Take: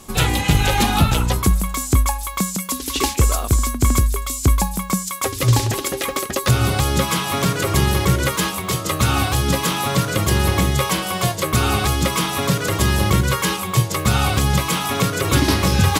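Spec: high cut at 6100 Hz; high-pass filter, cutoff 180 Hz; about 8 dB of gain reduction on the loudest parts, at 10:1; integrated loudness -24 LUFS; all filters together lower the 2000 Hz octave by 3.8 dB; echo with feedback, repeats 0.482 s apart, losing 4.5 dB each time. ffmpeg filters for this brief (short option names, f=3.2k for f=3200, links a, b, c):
-af "highpass=180,lowpass=6.1k,equalizer=f=2k:t=o:g=-5,acompressor=threshold=-24dB:ratio=10,aecho=1:1:482|964|1446|1928|2410|2892|3374|3856|4338:0.596|0.357|0.214|0.129|0.0772|0.0463|0.0278|0.0167|0.01,volume=2.5dB"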